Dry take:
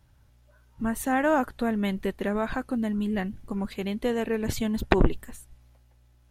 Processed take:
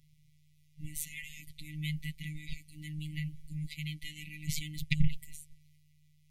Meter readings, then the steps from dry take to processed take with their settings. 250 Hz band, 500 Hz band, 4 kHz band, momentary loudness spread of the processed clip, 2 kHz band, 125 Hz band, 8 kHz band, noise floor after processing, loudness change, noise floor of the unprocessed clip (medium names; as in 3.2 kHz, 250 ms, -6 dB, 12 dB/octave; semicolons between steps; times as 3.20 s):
-15.5 dB, under -40 dB, -2.0 dB, 14 LU, -10.0 dB, -1.5 dB, -2.0 dB, -65 dBFS, -11.5 dB, -60 dBFS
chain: brick-wall FIR band-stop 210–1900 Hz; robot voice 152 Hz